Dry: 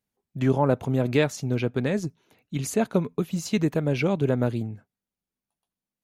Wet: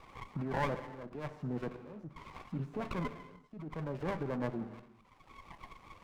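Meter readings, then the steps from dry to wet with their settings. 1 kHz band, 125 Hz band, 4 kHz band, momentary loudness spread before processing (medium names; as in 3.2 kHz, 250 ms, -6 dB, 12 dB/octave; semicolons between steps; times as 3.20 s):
-7.5 dB, -15.0 dB, -16.0 dB, 11 LU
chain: zero-crossing glitches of -22 dBFS; reverb removal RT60 0.88 s; high-pass 140 Hz 24 dB/octave; spectral gate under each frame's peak -30 dB strong; peak limiter -21 dBFS, peak gain reduction 11.5 dB; level held to a coarse grid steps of 13 dB; slow attack 709 ms; resonant low-pass 1.1 kHz, resonance Q 12; gated-style reverb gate 420 ms falling, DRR 8 dB; sliding maximum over 17 samples; trim +2 dB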